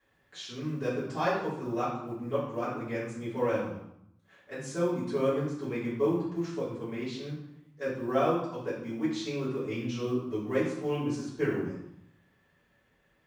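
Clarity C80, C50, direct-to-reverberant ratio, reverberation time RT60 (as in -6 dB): 5.5 dB, 2.5 dB, -11.0 dB, 0.75 s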